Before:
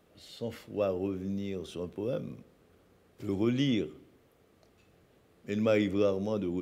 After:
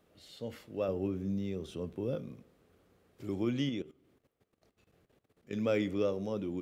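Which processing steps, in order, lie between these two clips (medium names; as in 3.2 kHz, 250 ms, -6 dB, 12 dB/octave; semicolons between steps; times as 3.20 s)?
0.88–2.15 s: bass shelf 250 Hz +7 dB; 3.69–5.53 s: level held to a coarse grid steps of 16 dB; trim -4 dB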